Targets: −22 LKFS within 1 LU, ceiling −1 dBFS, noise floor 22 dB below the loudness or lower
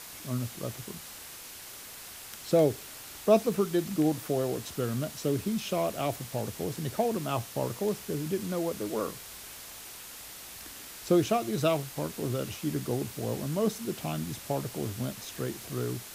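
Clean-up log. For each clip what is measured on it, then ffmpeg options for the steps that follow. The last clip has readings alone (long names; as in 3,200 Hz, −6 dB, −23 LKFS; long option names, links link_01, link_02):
background noise floor −45 dBFS; target noise floor −53 dBFS; integrated loudness −31.0 LKFS; sample peak −11.5 dBFS; target loudness −22.0 LKFS
→ -af "afftdn=noise_reduction=8:noise_floor=-45"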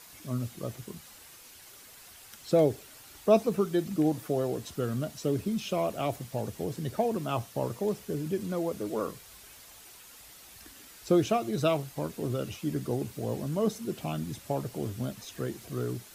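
background noise floor −52 dBFS; target noise floor −53 dBFS
→ -af "afftdn=noise_reduction=6:noise_floor=-52"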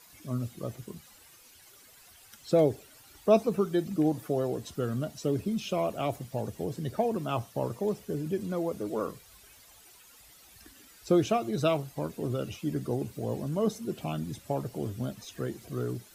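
background noise floor −56 dBFS; integrated loudness −31.0 LKFS; sample peak −11.5 dBFS; target loudness −22.0 LKFS
→ -af "volume=9dB"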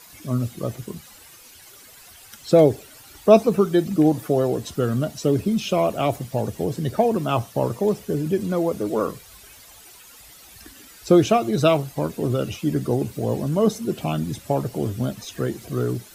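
integrated loudness −22.0 LKFS; sample peak −2.5 dBFS; background noise floor −47 dBFS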